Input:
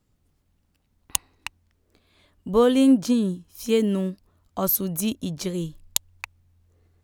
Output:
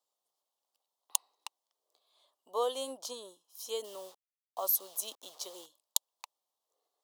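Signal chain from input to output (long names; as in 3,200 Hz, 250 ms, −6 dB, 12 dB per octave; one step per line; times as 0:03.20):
0:03.84–0:05.66: hold until the input has moved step −38.5 dBFS
high-pass filter 590 Hz 24 dB per octave
flat-topped bell 1,900 Hz −15.5 dB 1.1 octaves
level −6 dB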